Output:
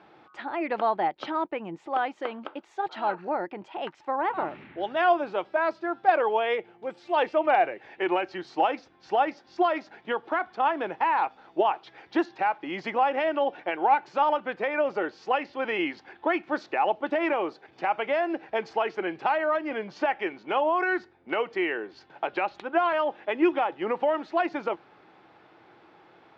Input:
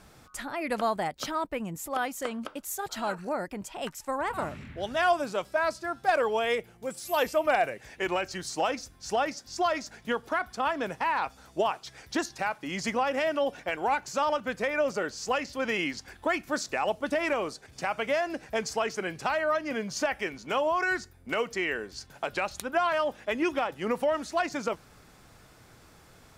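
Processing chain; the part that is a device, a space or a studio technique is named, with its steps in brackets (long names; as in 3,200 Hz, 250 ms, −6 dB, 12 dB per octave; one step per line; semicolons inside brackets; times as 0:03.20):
kitchen radio (loudspeaker in its box 230–3,400 Hz, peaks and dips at 240 Hz −4 dB, 340 Hz +9 dB, 830 Hz +8 dB)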